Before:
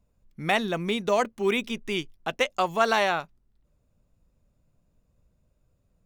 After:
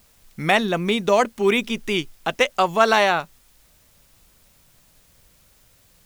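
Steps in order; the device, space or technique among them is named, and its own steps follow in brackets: noise-reduction cassette on a plain deck (tape noise reduction on one side only encoder only; wow and flutter 27 cents; white noise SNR 35 dB); trim +6 dB

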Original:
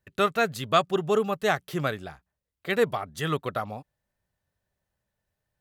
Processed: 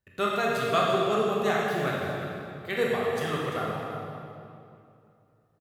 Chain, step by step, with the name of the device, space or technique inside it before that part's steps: cave (delay 342 ms -12 dB; reverberation RT60 2.6 s, pre-delay 15 ms, DRR -4.5 dB); trim -6 dB

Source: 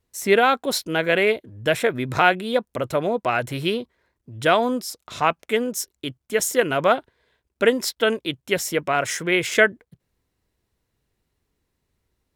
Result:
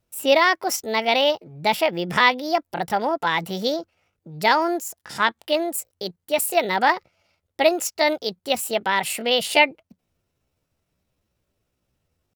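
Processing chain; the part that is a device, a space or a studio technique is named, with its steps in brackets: chipmunk voice (pitch shift +5.5 st)

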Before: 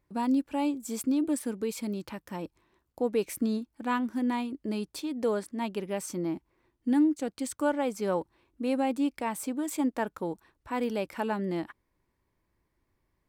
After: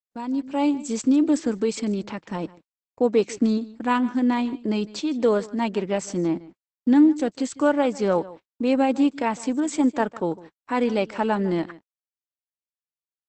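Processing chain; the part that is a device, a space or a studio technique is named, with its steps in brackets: delay 153 ms -19 dB; 8.75–10.74 s: gate with hold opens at -56 dBFS; video call (high-pass 110 Hz 24 dB/octave; level rider gain up to 12 dB; gate -37 dBFS, range -55 dB; trim -3.5 dB; Opus 12 kbps 48 kHz)

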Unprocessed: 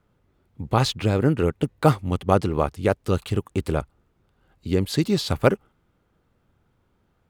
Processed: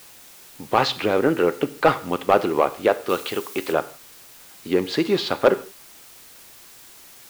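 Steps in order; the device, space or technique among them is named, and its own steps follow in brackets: tape answering machine (band-pass 370–3300 Hz; saturation -13 dBFS, distortion -12 dB; wow and flutter; white noise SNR 23 dB); 3.09–3.73 s: tilt EQ +2 dB/octave; gated-style reverb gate 190 ms falling, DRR 12 dB; trim +7 dB

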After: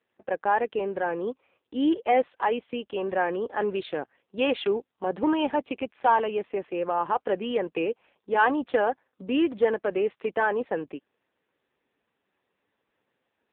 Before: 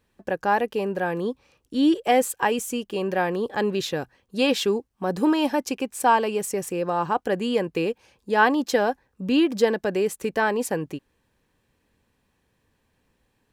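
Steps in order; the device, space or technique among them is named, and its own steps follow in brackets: 2.67–3.20 s: dynamic bell 4.9 kHz, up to +6 dB, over -58 dBFS, Q 2.6; telephone (band-pass 310–3300 Hz; saturation -10 dBFS, distortion -21 dB; AMR-NB 5.9 kbps 8 kHz)

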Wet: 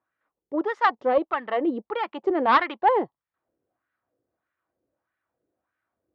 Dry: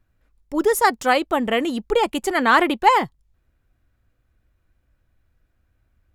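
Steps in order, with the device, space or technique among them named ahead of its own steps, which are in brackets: wah-wah guitar rig (wah-wah 1.6 Hz 420–1600 Hz, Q 2.2; valve stage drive 13 dB, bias 0.5; cabinet simulation 100–4500 Hz, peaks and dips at 320 Hz +4 dB, 1.5 kHz -4 dB, 2.5 kHz -4 dB); trim +5 dB

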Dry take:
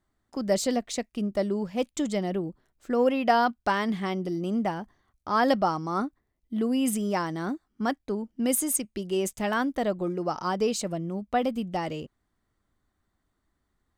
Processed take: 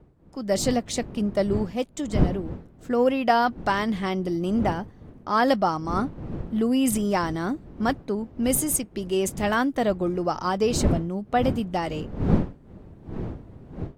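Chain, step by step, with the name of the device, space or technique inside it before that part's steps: smartphone video outdoors (wind noise 230 Hz; level rider gain up to 9.5 dB; trim -5.5 dB; AAC 64 kbps 44.1 kHz)

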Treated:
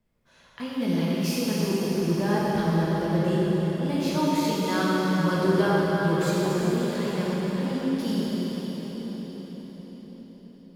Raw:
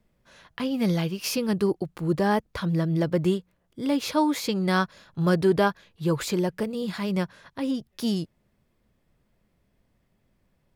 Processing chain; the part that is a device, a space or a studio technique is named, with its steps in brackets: cathedral (reverberation RT60 6.0 s, pre-delay 7 ms, DRR -7.5 dB); trim -7.5 dB

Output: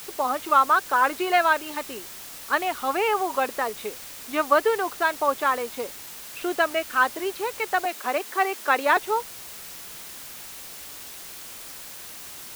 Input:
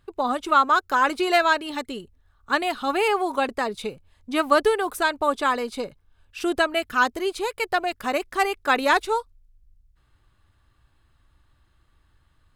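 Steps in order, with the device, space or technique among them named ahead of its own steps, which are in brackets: wax cylinder (band-pass 380–2700 Hz; wow and flutter; white noise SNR 14 dB); 7.85–8.97 s: steep high-pass 200 Hz 48 dB/octave

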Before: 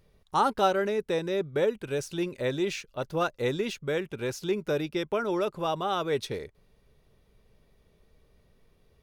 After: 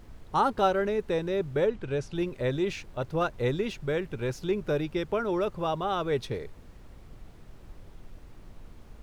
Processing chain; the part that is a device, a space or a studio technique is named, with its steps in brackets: car interior (peaking EQ 120 Hz +5.5 dB; treble shelf 4.1 kHz -8 dB; brown noise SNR 15 dB); 1.67–2.15 s: Bessel low-pass 5.7 kHz, order 2

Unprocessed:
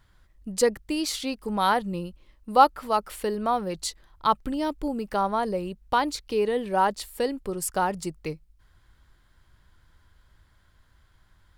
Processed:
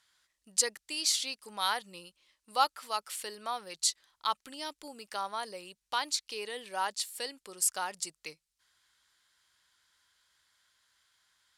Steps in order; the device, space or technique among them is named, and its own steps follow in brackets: piezo pickup straight into a mixer (low-pass 7.6 kHz 12 dB/octave; differentiator); trim +7 dB

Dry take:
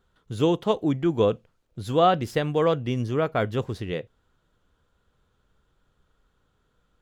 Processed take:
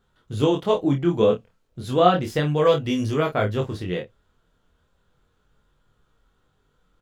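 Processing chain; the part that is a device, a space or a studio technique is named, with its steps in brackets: double-tracked vocal (doubling 28 ms -7.5 dB; chorus 0.33 Hz, delay 19.5 ms, depth 4.1 ms); 2.65–3.35 s: treble shelf 3.1 kHz +9 dB; trim +4.5 dB

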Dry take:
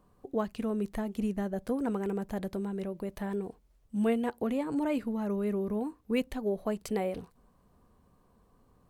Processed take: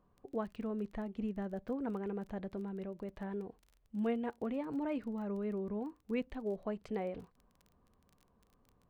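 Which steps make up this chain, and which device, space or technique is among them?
lo-fi chain (low-pass 3 kHz 12 dB/octave; wow and flutter 27 cents; crackle 22 per s -42 dBFS); trim -6.5 dB

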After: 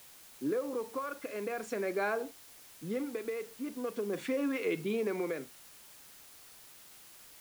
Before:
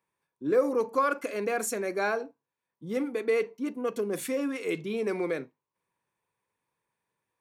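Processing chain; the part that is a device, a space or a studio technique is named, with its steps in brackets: medium wave at night (band-pass 120–3600 Hz; compression, threshold -30 dBFS, peak gain reduction 11.5 dB; tremolo 0.43 Hz, depth 54%; whistle 10 kHz -68 dBFS; white noise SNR 18 dB); trim +2 dB

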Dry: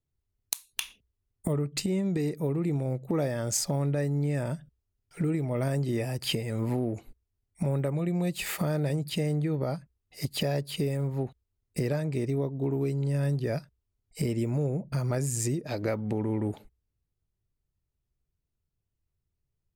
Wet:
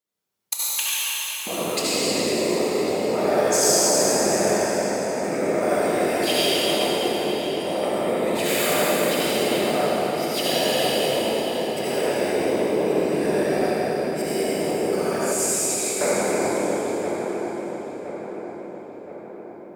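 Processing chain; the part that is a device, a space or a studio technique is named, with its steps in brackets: whispering ghost (whisper effect; high-pass 520 Hz 12 dB/octave; reverberation RT60 3.4 s, pre-delay 63 ms, DRR -8 dB); 15.32–16.01 s: steep high-pass 2.3 kHz; filtered feedback delay 1019 ms, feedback 58%, low-pass 2.2 kHz, level -8.5 dB; plate-style reverb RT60 4 s, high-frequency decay 0.75×, pre-delay 0 ms, DRR 0.5 dB; trim +3.5 dB

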